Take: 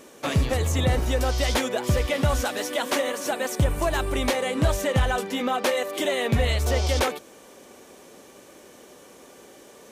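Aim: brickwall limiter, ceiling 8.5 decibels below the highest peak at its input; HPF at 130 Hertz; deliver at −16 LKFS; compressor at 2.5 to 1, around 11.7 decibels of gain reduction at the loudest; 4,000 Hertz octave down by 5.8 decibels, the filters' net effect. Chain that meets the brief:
high-pass filter 130 Hz
parametric band 4,000 Hz −8 dB
downward compressor 2.5 to 1, threshold −38 dBFS
level +24 dB
brickwall limiter −5.5 dBFS

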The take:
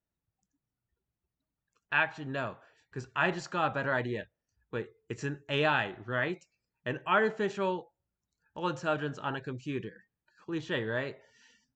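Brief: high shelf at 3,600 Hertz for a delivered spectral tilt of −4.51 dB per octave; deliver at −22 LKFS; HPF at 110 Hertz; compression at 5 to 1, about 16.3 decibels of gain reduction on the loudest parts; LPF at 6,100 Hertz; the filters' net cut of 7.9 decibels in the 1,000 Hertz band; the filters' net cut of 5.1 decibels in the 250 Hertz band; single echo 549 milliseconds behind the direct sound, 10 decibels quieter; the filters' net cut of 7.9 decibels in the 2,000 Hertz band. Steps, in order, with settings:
high-pass filter 110 Hz
low-pass filter 6,100 Hz
parametric band 250 Hz −6.5 dB
parametric band 1,000 Hz −8 dB
parametric band 2,000 Hz −6 dB
high-shelf EQ 3,600 Hz −5 dB
downward compressor 5 to 1, threshold −47 dBFS
single-tap delay 549 ms −10 dB
level +29 dB

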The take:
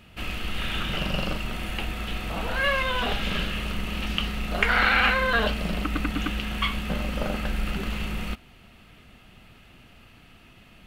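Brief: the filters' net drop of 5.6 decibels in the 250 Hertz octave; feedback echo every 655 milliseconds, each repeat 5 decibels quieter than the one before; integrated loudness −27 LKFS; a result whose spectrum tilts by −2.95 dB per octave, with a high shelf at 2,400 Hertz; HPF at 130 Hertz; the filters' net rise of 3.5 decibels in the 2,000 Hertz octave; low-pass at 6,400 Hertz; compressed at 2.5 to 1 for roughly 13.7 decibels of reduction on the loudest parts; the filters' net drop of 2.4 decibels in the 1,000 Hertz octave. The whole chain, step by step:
high-pass filter 130 Hz
low-pass filter 6,400 Hz
parametric band 250 Hz −6.5 dB
parametric band 1,000 Hz −6 dB
parametric band 2,000 Hz +4 dB
high-shelf EQ 2,400 Hz +5.5 dB
downward compressor 2.5 to 1, threshold −38 dBFS
repeating echo 655 ms, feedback 56%, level −5 dB
level +7 dB

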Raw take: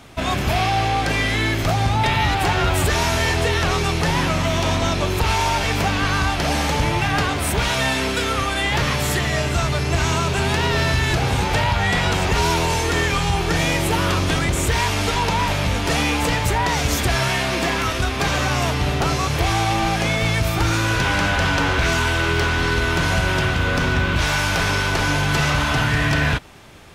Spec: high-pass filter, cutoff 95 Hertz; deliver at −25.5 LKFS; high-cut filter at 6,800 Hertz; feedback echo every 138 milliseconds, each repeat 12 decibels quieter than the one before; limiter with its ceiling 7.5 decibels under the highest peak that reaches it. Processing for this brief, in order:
high-pass filter 95 Hz
low-pass filter 6,800 Hz
brickwall limiter −14.5 dBFS
repeating echo 138 ms, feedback 25%, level −12 dB
level −3 dB

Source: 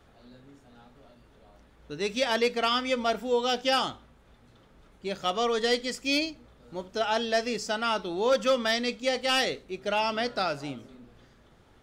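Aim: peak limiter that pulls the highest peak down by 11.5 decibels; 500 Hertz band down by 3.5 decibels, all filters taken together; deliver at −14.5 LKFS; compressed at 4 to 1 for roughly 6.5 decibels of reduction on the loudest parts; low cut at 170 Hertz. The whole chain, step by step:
high-pass filter 170 Hz
parametric band 500 Hz −4 dB
downward compressor 4 to 1, threshold −30 dBFS
level +25 dB
brickwall limiter −5 dBFS

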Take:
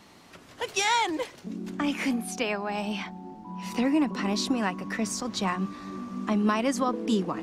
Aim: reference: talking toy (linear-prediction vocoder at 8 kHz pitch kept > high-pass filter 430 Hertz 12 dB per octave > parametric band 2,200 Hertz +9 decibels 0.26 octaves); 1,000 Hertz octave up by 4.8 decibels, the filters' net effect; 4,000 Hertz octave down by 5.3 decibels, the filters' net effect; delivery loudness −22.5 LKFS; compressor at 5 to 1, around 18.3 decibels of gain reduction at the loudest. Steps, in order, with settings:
parametric band 1,000 Hz +6 dB
parametric band 4,000 Hz −8 dB
downward compressor 5 to 1, threshold −39 dBFS
linear-prediction vocoder at 8 kHz pitch kept
high-pass filter 430 Hz 12 dB per octave
parametric band 2,200 Hz +9 dB 0.26 octaves
level +21.5 dB

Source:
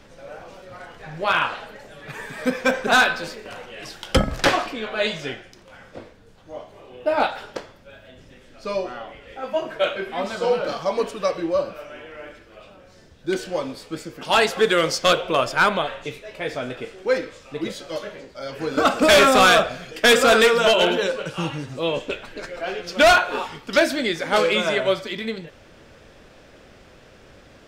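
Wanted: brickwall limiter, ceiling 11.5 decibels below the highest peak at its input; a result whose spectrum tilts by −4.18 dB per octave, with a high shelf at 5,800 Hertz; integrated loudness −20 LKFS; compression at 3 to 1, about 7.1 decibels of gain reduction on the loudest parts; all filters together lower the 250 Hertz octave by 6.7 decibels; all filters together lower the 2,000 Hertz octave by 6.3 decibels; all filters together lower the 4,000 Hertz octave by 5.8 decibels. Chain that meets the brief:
parametric band 250 Hz −9 dB
parametric band 2,000 Hz −8.5 dB
parametric band 4,000 Hz −7.5 dB
high-shelf EQ 5,800 Hz +9 dB
downward compressor 3 to 1, threshold −23 dBFS
level +12 dB
brickwall limiter −8.5 dBFS

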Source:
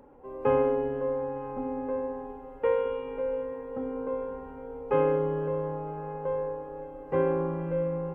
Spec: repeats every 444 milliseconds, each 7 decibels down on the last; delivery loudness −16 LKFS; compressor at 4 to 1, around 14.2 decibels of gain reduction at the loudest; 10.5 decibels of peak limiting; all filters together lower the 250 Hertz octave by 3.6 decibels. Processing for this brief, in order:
parametric band 250 Hz −5 dB
downward compressor 4 to 1, threshold −39 dBFS
brickwall limiter −35.5 dBFS
repeating echo 444 ms, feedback 45%, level −7 dB
level +26 dB

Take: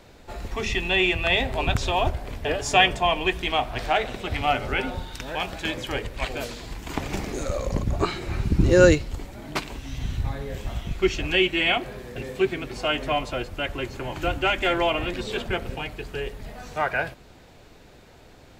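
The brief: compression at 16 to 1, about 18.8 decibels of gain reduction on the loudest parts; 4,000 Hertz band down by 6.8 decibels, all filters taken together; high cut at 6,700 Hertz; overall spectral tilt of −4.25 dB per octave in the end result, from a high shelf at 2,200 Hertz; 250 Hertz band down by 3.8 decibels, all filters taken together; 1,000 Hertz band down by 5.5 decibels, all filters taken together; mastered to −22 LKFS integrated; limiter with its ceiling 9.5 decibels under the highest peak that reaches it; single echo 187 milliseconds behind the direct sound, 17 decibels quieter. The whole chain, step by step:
low-pass filter 6,700 Hz
parametric band 250 Hz −5.5 dB
parametric band 1,000 Hz −7 dB
high-shelf EQ 2,200 Hz −4 dB
parametric band 4,000 Hz −5 dB
downward compressor 16 to 1, threshold −32 dBFS
brickwall limiter −29 dBFS
single-tap delay 187 ms −17 dB
level +18 dB

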